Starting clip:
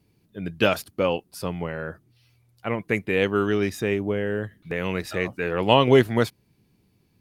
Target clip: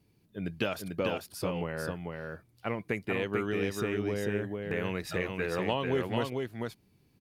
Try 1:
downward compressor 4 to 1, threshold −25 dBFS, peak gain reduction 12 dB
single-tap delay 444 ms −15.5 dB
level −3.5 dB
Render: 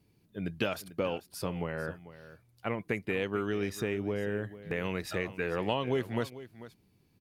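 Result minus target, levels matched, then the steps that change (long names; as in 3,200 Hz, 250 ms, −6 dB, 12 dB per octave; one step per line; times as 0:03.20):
echo-to-direct −11.5 dB
change: single-tap delay 444 ms −4 dB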